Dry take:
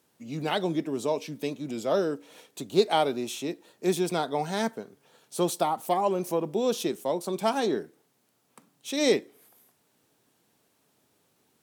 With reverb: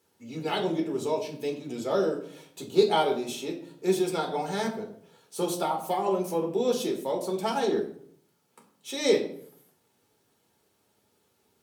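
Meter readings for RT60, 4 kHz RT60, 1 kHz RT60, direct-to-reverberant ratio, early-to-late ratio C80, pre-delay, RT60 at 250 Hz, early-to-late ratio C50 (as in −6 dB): 0.60 s, 0.40 s, 0.55 s, 0.5 dB, 13.0 dB, 4 ms, 0.75 s, 9.5 dB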